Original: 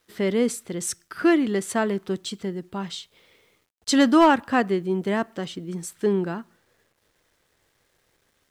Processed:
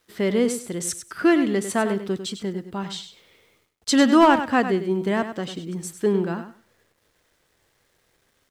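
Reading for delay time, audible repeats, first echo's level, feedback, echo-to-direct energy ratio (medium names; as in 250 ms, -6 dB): 99 ms, 2, -10.0 dB, 18%, -10.0 dB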